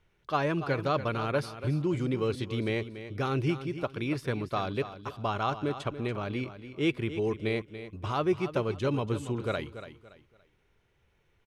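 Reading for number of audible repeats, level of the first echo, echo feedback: 3, -12.0 dB, 30%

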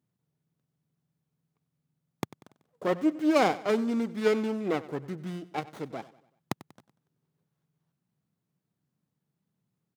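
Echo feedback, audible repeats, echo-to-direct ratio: 46%, 3, -17.0 dB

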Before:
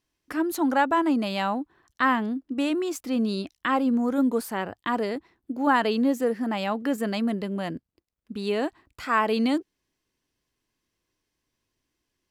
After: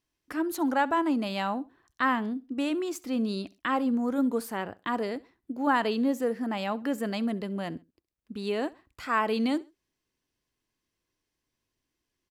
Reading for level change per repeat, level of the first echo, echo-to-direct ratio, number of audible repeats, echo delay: -10.0 dB, -22.0 dB, -21.5 dB, 2, 66 ms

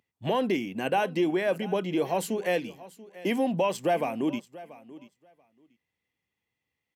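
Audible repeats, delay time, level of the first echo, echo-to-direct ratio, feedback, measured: 2, 0.685 s, -18.5 dB, -18.5 dB, 15%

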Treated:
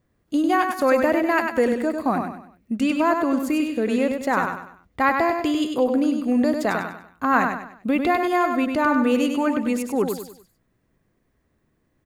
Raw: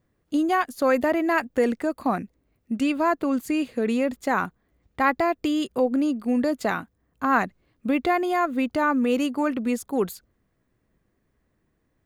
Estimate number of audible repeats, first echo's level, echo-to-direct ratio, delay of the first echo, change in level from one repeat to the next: 4, -5.5 dB, -5.0 dB, 98 ms, -8.5 dB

